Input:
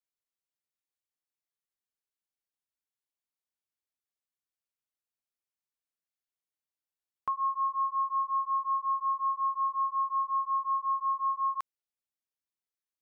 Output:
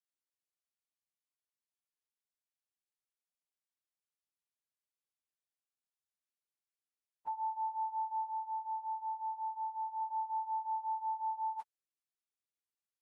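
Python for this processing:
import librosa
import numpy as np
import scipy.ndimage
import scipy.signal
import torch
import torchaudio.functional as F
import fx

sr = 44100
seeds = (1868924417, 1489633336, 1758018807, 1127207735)

y = fx.partial_stretch(x, sr, pct=86)
y = fx.lowpass(y, sr, hz=1100.0, slope=6, at=(8.3, 10.0), fade=0.02)
y = y * 10.0 ** (-7.0 / 20.0)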